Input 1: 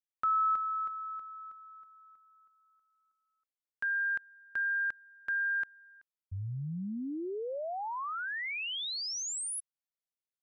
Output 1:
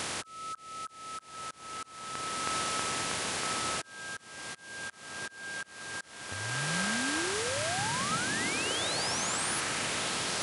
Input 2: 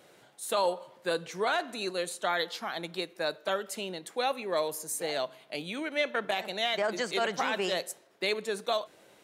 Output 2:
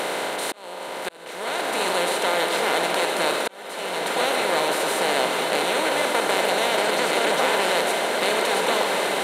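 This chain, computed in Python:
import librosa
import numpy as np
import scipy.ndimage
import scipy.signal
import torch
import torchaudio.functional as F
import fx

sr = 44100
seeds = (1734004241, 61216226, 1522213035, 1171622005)

y = fx.bin_compress(x, sr, power=0.2)
y = fx.echo_diffused(y, sr, ms=1367, feedback_pct=46, wet_db=-3.5)
y = fx.auto_swell(y, sr, attack_ms=750.0)
y = F.gain(torch.from_numpy(y), -2.5).numpy()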